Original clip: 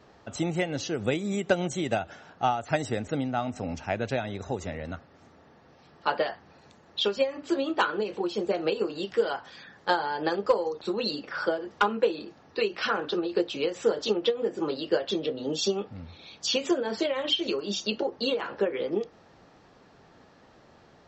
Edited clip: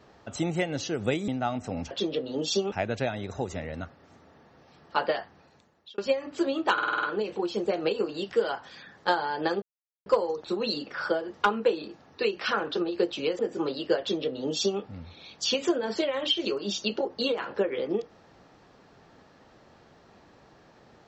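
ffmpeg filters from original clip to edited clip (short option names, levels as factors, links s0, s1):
-filter_complex "[0:a]asplit=13[s0][s1][s2][s3][s4][s5][s6][s7][s8][s9][s10][s11][s12];[s0]atrim=end=1.282[s13];[s1]atrim=start=3.198:end=3.832[s14];[s2]atrim=start=15.018:end=15.832[s15];[s3]atrim=start=3.828:end=7.09,asetpts=PTS-STARTPTS,afade=t=out:st=2.482:d=0.78[s16];[s4]atrim=start=7.09:end=7.892,asetpts=PTS-STARTPTS,afade=t=in:d=0.004:c=hsin[s17];[s5]atrim=start=7.838:end=7.892[s18];[s6]atrim=start=7.838:end=7.892[s19];[s7]atrim=start=7.838:end=7.892[s20];[s8]atrim=start=7.838:end=7.892[s21];[s9]atrim=start=7.838:end=7.892[s22];[s10]atrim=start=7.838:end=10.43,asetpts=PTS-STARTPTS,afade=t=out:st=2.588:d=0.004:c=hsin,apad=pad_dur=0.44[s23];[s11]atrim=start=10.43:end=13.762,asetpts=PTS-STARTPTS,afade=t=in:d=0.004:c=hsin[s24];[s12]atrim=start=14.408[s25];[s13][s14]acrossfade=d=0.004:c1=hsin:c2=hsin[s26];[s26][s15]acrossfade=d=0.004:c1=hsin:c2=hsin[s27];[s16][s17]concat=n=2:v=0:a=1[s28];[s27][s28]acrossfade=d=0.004:c1=hsin:c2=hsin[s29];[s29][s18]acrossfade=d=0.004:c1=hsin:c2=hsin[s30];[s30][s19]acrossfade=d=0.004:c1=hsin:c2=hsin[s31];[s31][s20]acrossfade=d=0.004:c1=hsin:c2=hsin[s32];[s32][s21]acrossfade=d=0.004:c1=hsin:c2=hsin[s33];[s33][s22]acrossfade=d=0.004:c1=hsin:c2=hsin[s34];[s23][s24]concat=n=2:v=0:a=1[s35];[s34][s35]acrossfade=d=0.004:c1=hsin:c2=hsin[s36];[s36][s25]acrossfade=d=0.004:c1=hsin:c2=hsin"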